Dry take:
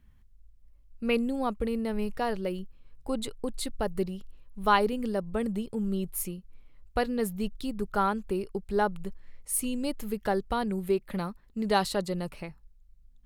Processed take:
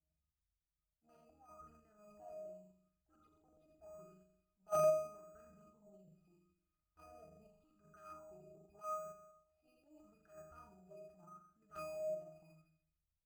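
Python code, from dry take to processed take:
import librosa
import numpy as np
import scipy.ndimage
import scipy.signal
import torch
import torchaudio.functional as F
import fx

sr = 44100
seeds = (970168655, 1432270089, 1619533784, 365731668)

p1 = scipy.signal.sosfilt(scipy.signal.butter(2, 5800.0, 'lowpass', fs=sr, output='sos'), x)
p2 = fx.high_shelf(p1, sr, hz=2400.0, db=9.0)
p3 = p2 + fx.room_flutter(p2, sr, wall_m=7.4, rt60_s=0.69, dry=0)
p4 = fx.cheby_harmonics(p3, sr, harmonics=(3,), levels_db=(-9,), full_scale_db=-3.0)
p5 = fx.octave_resonator(p4, sr, note='D#', decay_s=0.8)
p6 = fx.transient(p5, sr, attack_db=-10, sustain_db=4)
p7 = fx.level_steps(p6, sr, step_db=12)
p8 = p6 + (p7 * 10.0 ** (-2.0 / 20.0))
p9 = np.repeat(scipy.signal.resample_poly(p8, 1, 6), 6)[:len(p8)]
p10 = fx.bell_lfo(p9, sr, hz=0.82, low_hz=620.0, high_hz=1600.0, db=17)
y = p10 * 10.0 ** (12.0 / 20.0)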